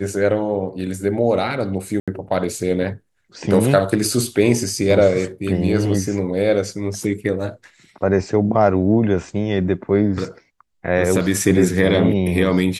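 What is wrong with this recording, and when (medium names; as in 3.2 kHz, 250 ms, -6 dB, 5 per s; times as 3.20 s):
2.00–2.08 s: dropout 76 ms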